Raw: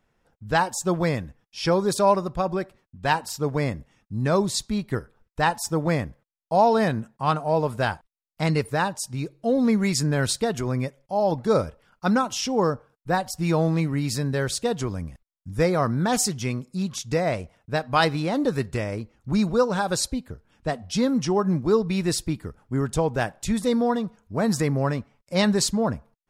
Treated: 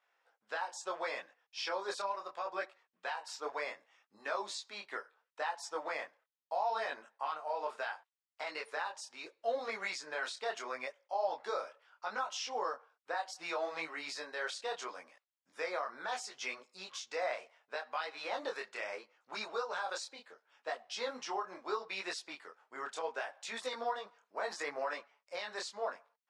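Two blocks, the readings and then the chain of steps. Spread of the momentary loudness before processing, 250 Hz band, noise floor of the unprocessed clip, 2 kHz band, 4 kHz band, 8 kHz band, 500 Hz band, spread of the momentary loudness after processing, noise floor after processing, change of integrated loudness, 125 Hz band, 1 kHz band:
10 LU, −31.0 dB, −78 dBFS, −8.5 dB, −11.5 dB, −17.5 dB, −15.5 dB, 9 LU, below −85 dBFS, −15.5 dB, below −40 dB, −12.0 dB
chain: Bessel high-pass filter 880 Hz, order 4
downward compressor 6 to 1, threshold −29 dBFS, peak gain reduction 12 dB
brickwall limiter −25 dBFS, peak gain reduction 9.5 dB
high-frequency loss of the air 110 metres
micro pitch shift up and down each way 25 cents
level +3 dB

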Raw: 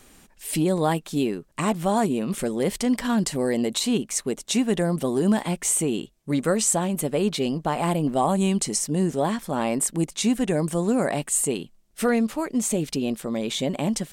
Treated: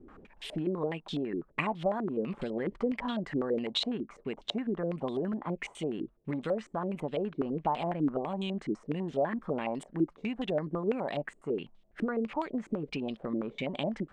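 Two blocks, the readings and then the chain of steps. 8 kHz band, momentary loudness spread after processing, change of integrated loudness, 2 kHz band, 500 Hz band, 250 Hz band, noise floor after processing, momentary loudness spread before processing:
below −30 dB, 5 LU, −9.5 dB, −7.5 dB, −7.5 dB, −9.5 dB, −63 dBFS, 5 LU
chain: downward compressor 6 to 1, threshold −31 dBFS, peak gain reduction 14 dB
low-pass on a step sequencer 12 Hz 330–3,400 Hz
level −1.5 dB

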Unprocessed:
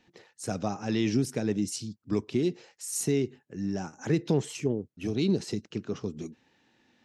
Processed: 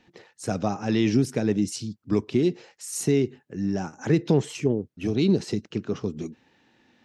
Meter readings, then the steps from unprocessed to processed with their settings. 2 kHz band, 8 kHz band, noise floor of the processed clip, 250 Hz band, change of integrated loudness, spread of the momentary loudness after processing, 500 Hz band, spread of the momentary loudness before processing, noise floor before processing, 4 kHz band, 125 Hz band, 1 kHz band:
+4.5 dB, +0.5 dB, −67 dBFS, +5.0 dB, +5.0 dB, 10 LU, +5.0 dB, 9 LU, −72 dBFS, +3.0 dB, +5.0 dB, +5.0 dB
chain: high-shelf EQ 5,900 Hz −7 dB
level +5 dB

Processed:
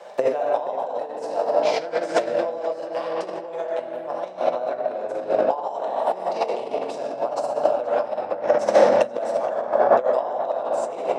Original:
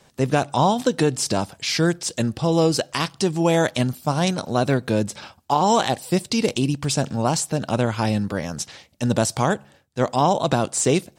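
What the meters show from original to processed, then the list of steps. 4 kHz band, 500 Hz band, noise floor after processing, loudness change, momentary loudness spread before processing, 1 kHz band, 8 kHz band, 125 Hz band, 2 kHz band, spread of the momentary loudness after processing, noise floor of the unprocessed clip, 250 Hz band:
−12.5 dB, +3.0 dB, −35 dBFS, −1.5 dB, 7 LU, −1.0 dB, below −15 dB, below −25 dB, −5.5 dB, 11 LU, −57 dBFS, −14.0 dB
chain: high-shelf EQ 6,800 Hz −10 dB
rectangular room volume 170 cubic metres, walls hard, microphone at 0.79 metres
compressor whose output falls as the input rises −23 dBFS, ratio −0.5
high-pass with resonance 600 Hz, resonance Q 3.5
high-shelf EQ 2,300 Hz −9 dB
on a send: tape delay 476 ms, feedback 55%, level −13 dB, low-pass 2,100 Hz

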